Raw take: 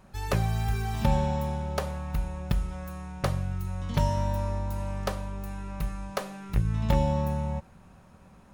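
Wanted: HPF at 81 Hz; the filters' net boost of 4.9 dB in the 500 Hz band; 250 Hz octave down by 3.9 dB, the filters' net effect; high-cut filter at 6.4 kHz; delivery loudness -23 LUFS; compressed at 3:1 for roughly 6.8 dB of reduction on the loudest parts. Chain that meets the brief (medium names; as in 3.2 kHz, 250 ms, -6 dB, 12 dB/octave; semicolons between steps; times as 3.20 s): high-pass 81 Hz; low-pass 6.4 kHz; peaking EQ 250 Hz -7.5 dB; peaking EQ 500 Hz +7 dB; compression 3:1, threshold -31 dBFS; trim +13 dB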